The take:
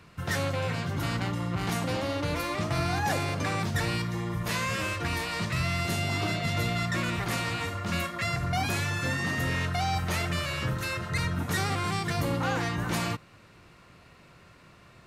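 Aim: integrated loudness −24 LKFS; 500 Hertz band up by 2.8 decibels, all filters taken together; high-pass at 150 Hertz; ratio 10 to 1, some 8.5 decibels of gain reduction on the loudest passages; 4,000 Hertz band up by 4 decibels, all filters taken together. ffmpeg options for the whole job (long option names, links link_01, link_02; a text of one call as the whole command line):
ffmpeg -i in.wav -af "highpass=150,equalizer=frequency=500:width_type=o:gain=3.5,equalizer=frequency=4000:width_type=o:gain=5,acompressor=threshold=-33dB:ratio=10,volume=12dB" out.wav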